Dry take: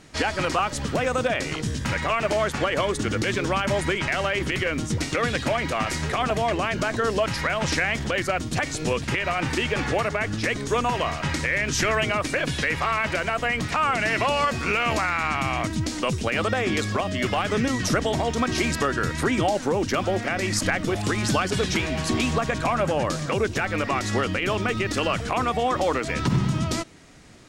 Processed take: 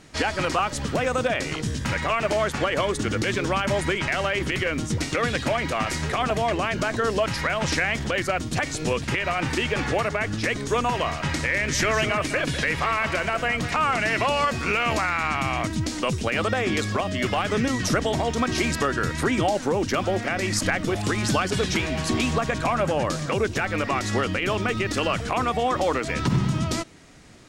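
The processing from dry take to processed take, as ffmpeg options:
ffmpeg -i in.wav -filter_complex "[0:a]asettb=1/sr,asplit=3[link_01][link_02][link_03];[link_01]atrim=end=11.134[link_04];[link_02]atrim=start=11.13:end=13.99,asetpts=PTS-STARTPTS,afade=type=in:duration=0.004:curve=qsin,afade=type=out:start_time=2.856:duration=0.004:curve=qsin,aecho=1:1:202:0.266,atrim=end_sample=126126[link_05];[link_03]atrim=start=13.986[link_06];[link_04][link_05]acrossfade=duration=0.004:curve1=hsin:curve2=qsin[link_07];[link_07][link_06]acrossfade=duration=0.004:curve1=qsin:curve2=hsin" out.wav

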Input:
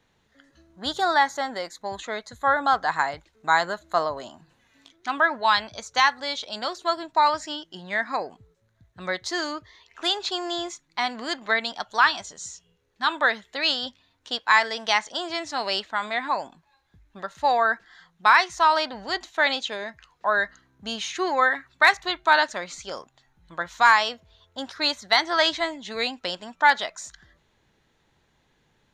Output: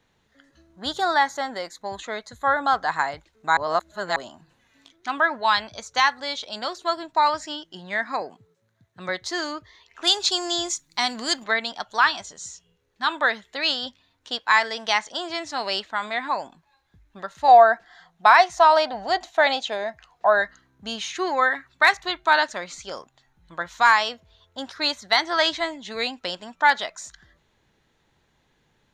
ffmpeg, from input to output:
ffmpeg -i in.wav -filter_complex "[0:a]asettb=1/sr,asplit=3[link_01][link_02][link_03];[link_01]atrim=end=8.214[link_04];[link_02]atrim=start=8.21:end=9.09,asetpts=PTS-STARTPTS,afade=type=in:duration=0.004:curve=qsin,afade=type=out:start_time=0.876:duration=0.004:curve=qsin,highpass=frequency=110:width=0.5412,highpass=frequency=110:width=1.3066[link_05];[link_03]atrim=start=9.086[link_06];[link_04][link_05]acrossfade=duration=0.004:curve1=hsin:curve2=qsin[link_07];[link_07][link_06]acrossfade=duration=0.004:curve1=qsin:curve2=hsin,asettb=1/sr,asplit=3[link_08][link_09][link_10];[link_08]atrim=end=10.074[link_11];[link_09]atrim=start=10.07:end=11.44,asetpts=PTS-STARTPTS,afade=type=in:duration=0.004:curve=qsin,afade=type=out:start_time=1.366:duration=0.004:curve=qsin,bass=frequency=250:gain=5,treble=frequency=4000:gain=14[link_12];[link_10]atrim=start=11.436[link_13];[link_11][link_12]acrossfade=duration=0.004:curve1=hsin:curve2=qsin[link_14];[link_14][link_13]acrossfade=duration=0.004:curve1=qsin:curve2=hsin,asettb=1/sr,asplit=3[link_15][link_16][link_17];[link_15]atrim=end=17.484[link_18];[link_16]atrim=start=17.48:end=20.42,asetpts=PTS-STARTPTS,afade=type=in:duration=0.004:curve=qsin,afade=type=out:start_time=2.936:duration=0.004:curve=qsin,equalizer=frequency=710:width_type=o:width=0.46:gain=13[link_19];[link_17]atrim=start=20.416[link_20];[link_18][link_19]acrossfade=duration=0.004:curve1=hsin:curve2=qsin[link_21];[link_21][link_20]acrossfade=duration=0.004:curve1=qsin:curve2=hsin,asplit=3[link_22][link_23][link_24];[link_22]atrim=end=3.572[link_25];[link_23]atrim=start=3.568:end=4.162,asetpts=PTS-STARTPTS,areverse[link_26];[link_24]atrim=start=4.158[link_27];[link_25][link_26]acrossfade=duration=0.004:curve1=hsin:curve2=hsin[link_28];[link_28][link_27]acrossfade=duration=0.004:curve1=hsin:curve2=hsin" out.wav

